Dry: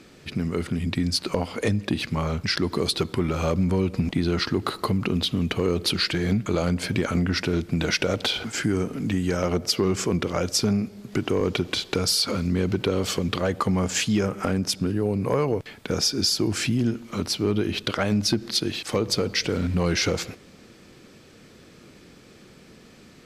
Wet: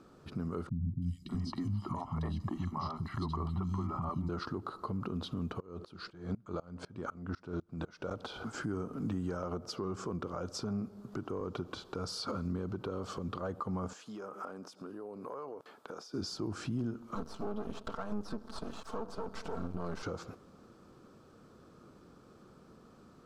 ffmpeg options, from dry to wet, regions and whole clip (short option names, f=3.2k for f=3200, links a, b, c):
-filter_complex "[0:a]asettb=1/sr,asplit=3[a][b][c];[a]atrim=end=0.694[d];[b]atrim=start=0.69:end=4.29,asetpts=PTS-STARTPTS,afade=t=in:d=0.004:c=qsin,afade=t=out:st=3.596:d=0.004:c=qsin,acrossover=split=4400[e][f];[f]acompressor=threshold=-44dB:ratio=4:attack=1:release=60[g];[e][g]amix=inputs=2:normalize=0,aecho=1:1:1:0.87,atrim=end_sample=158760,acrossover=split=230|2700[h][i][j];[j]adelay=330[k];[i]adelay=600[l];[h][l][k]amix=inputs=3:normalize=0,atrim=end_sample=158760[m];[c]atrim=start=4.286[n];[d][m]acrossfade=d=0.004:c1=hsin:c2=qsin[o];[o][n]acrossfade=d=0.004:c1=qsin:c2=hsin,asettb=1/sr,asplit=3[p][q][r];[p]atrim=end=5.604[s];[q]atrim=start=5.6:end=8.11,asetpts=PTS-STARTPTS,afade=t=in:d=0.004:c=qsin,afade=t=out:st=2.506:d=0.004:c=qsin,lowpass=8.3k,aeval=exprs='val(0)*pow(10,-26*if(lt(mod(-4*n/s,1),2*abs(-4)/1000),1-mod(-4*n/s,1)/(2*abs(-4)/1000),(mod(-4*n/s,1)-2*abs(-4)/1000)/(1-2*abs(-4)/1000))/20)':c=same[t];[r]atrim=start=8.106[u];[s][t]acrossfade=d=0.004:c1=hsin:c2=qsin[v];[v][u]acrossfade=d=0.004:c1=qsin:c2=hsin,asettb=1/sr,asplit=3[w][x][y];[w]atrim=end=13.934[z];[x]atrim=start=13.93:end=16.14,asetpts=PTS-STARTPTS,afade=t=in:d=0.004:c=qsin,afade=t=out:st=2.206:d=0.004:c=qsin,highpass=360,acompressor=threshold=-33dB:ratio=6:attack=3.2:release=140:knee=1:detection=peak[aa];[y]atrim=start=16.136[ab];[z][aa]acrossfade=d=0.004:c1=hsin:c2=qsin[ac];[ac][ab]acrossfade=d=0.004:c1=qsin:c2=hsin,asettb=1/sr,asplit=3[ad][ae][af];[ad]atrim=end=17.154[ag];[ae]atrim=start=17.15:end=20.03,asetpts=PTS-STARTPTS,afade=t=in:d=0.004:c=qsin,afade=t=out:st=2.876:d=0.004:c=qsin,acrossover=split=3200[ah][ai];[ai]acompressor=threshold=-31dB:ratio=4:attack=1:release=60[aj];[ah][aj]amix=inputs=2:normalize=0,aecho=1:1:4.5:0.98,atrim=end_sample=127008,aeval=exprs='max(val(0),0)':c=same[ak];[af]atrim=start=20.026[al];[ag][ak]acrossfade=d=0.004:c1=hsin:c2=qsin[am];[am][al]acrossfade=d=0.004:c1=qsin:c2=hsin,acrossover=split=8900[an][ao];[ao]acompressor=threshold=-58dB:ratio=4:attack=1:release=60[ap];[an][ap]amix=inputs=2:normalize=0,highshelf=f=1.6k:t=q:w=3:g=-8,alimiter=limit=-19dB:level=0:latency=1:release=217,volume=-8dB"